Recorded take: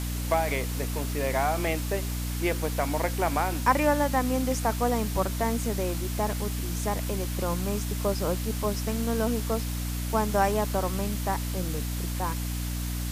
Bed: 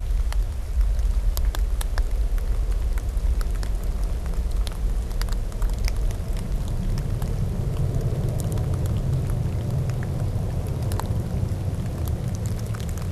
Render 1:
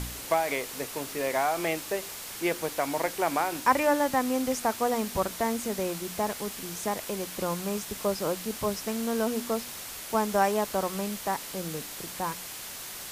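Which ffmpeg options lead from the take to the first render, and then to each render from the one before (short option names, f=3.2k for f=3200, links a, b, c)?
-af "bandreject=f=60:t=h:w=4,bandreject=f=120:t=h:w=4,bandreject=f=180:t=h:w=4,bandreject=f=240:t=h:w=4,bandreject=f=300:t=h:w=4"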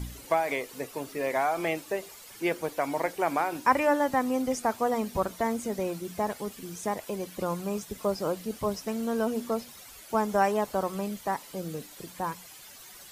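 -af "afftdn=nr=12:nf=-40"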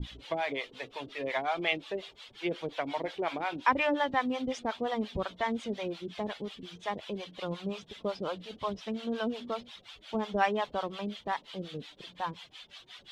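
-filter_complex "[0:a]lowpass=f=3.4k:t=q:w=4.4,acrossover=split=550[a][b];[a]aeval=exprs='val(0)*(1-1/2+1/2*cos(2*PI*5.6*n/s))':c=same[c];[b]aeval=exprs='val(0)*(1-1/2-1/2*cos(2*PI*5.6*n/s))':c=same[d];[c][d]amix=inputs=2:normalize=0"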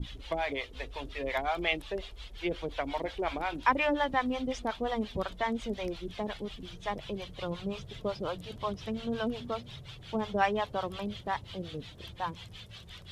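-filter_complex "[1:a]volume=-24dB[a];[0:a][a]amix=inputs=2:normalize=0"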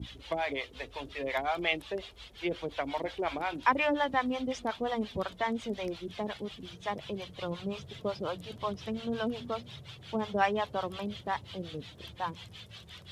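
-af "highpass=f=63:w=0.5412,highpass=f=63:w=1.3066,equalizer=f=85:t=o:w=1.5:g=-2"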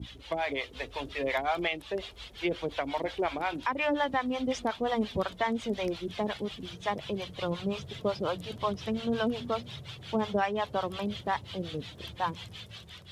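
-af "dynaudnorm=f=240:g=5:m=4dB,alimiter=limit=-18dB:level=0:latency=1:release=350"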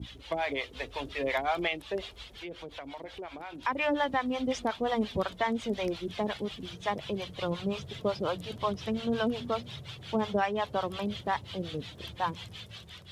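-filter_complex "[0:a]asettb=1/sr,asplit=3[a][b][c];[a]atrim=end=2.224[d];[b]atrim=start=2.22:end=3.65,asetpts=PTS-STARTPTS,afade=t=in:d=0.004:c=qsin,afade=t=out:st=1.426:d=0.004:c=qsin,acompressor=threshold=-43dB:ratio=2.5:attack=3.2:release=140:knee=1:detection=peak[e];[c]atrim=start=3.646[f];[d][e]acrossfade=d=0.004:c1=hsin:c2=qsin[g];[g][f]acrossfade=d=0.004:c1=qsin:c2=hsin"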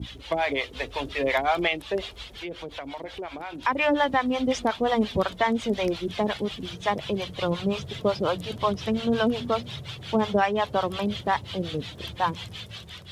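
-af "volume=6dB"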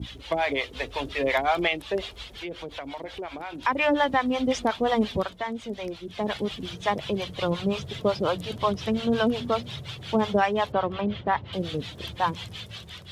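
-filter_complex "[0:a]asettb=1/sr,asplit=3[a][b][c];[a]atrim=end=10.724[d];[b]atrim=start=10.72:end=11.53,asetpts=PTS-STARTPTS,afade=t=in:d=0.004:c=qsin,afade=t=out:st=0.806:d=0.004:c=qsin,lowpass=2.5k[e];[c]atrim=start=11.526[f];[d][e]acrossfade=d=0.004:c1=hsin:c2=qsin[g];[g][f]acrossfade=d=0.004:c1=qsin:c2=hsin,asplit=3[h][i][j];[h]atrim=end=5.34,asetpts=PTS-STARTPTS,afade=t=out:st=5.1:d=0.24:silence=0.398107[k];[i]atrim=start=5.34:end=6.11,asetpts=PTS-STARTPTS,volume=-8dB[l];[j]atrim=start=6.11,asetpts=PTS-STARTPTS,afade=t=in:d=0.24:silence=0.398107[m];[k][l][m]concat=n=3:v=0:a=1"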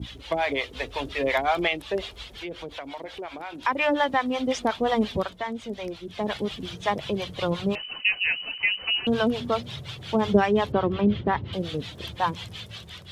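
-filter_complex "[0:a]asettb=1/sr,asplit=3[a][b][c];[a]atrim=end=2.734[d];[b]atrim=start=2.73:end=4.64,asetpts=PTS-STARTPTS,afade=t=in:d=0.004:c=qsin,afade=t=out:st=1.906:d=0.004:c=qsin,lowshelf=f=150:g=-7.5[e];[c]atrim=start=4.636[f];[d][e]acrossfade=d=0.004:c1=hsin:c2=qsin[g];[g][f]acrossfade=d=0.004:c1=qsin:c2=hsin,asettb=1/sr,asplit=3[h][i][j];[h]atrim=end=7.754[k];[i]atrim=start=7.75:end=9.07,asetpts=PTS-STARTPTS,afade=t=in:d=0.004:c=qsin,afade=t=out:st=1.316:d=0.004:c=qsin,lowpass=f=2.6k:t=q:w=0.5098,lowpass=f=2.6k:t=q:w=0.6013,lowpass=f=2.6k:t=q:w=0.9,lowpass=f=2.6k:t=q:w=2.563,afreqshift=-3100[l];[j]atrim=start=9.066[m];[k][l]acrossfade=d=0.004:c1=hsin:c2=qsin[n];[n][m]acrossfade=d=0.004:c1=qsin:c2=hsin,asettb=1/sr,asplit=3[o][p][q];[o]atrim=end=10.254[r];[p]atrim=start=10.25:end=11.54,asetpts=PTS-STARTPTS,afade=t=in:d=0.004:c=qsin,afade=t=out:st=1.286:d=0.004:c=qsin,lowshelf=f=480:t=q:w=1.5:g=6[s];[q]atrim=start=11.536[t];[r][s]acrossfade=d=0.004:c1=hsin:c2=qsin[u];[u][t]acrossfade=d=0.004:c1=qsin:c2=hsin"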